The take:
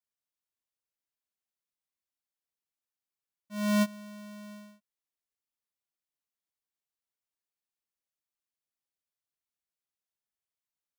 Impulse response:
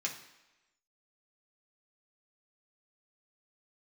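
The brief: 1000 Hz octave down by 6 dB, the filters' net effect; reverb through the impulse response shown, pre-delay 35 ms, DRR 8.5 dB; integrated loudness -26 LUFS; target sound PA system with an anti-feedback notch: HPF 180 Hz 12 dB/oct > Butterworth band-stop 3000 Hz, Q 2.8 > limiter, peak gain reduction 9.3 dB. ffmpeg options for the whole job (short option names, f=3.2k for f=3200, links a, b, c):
-filter_complex "[0:a]equalizer=f=1k:t=o:g=-6.5,asplit=2[a][b];[1:a]atrim=start_sample=2205,adelay=35[c];[b][c]afir=irnorm=-1:irlink=0,volume=-11.5dB[d];[a][d]amix=inputs=2:normalize=0,highpass=180,asuperstop=centerf=3000:order=8:qfactor=2.8,volume=15dB,alimiter=limit=-11.5dB:level=0:latency=1"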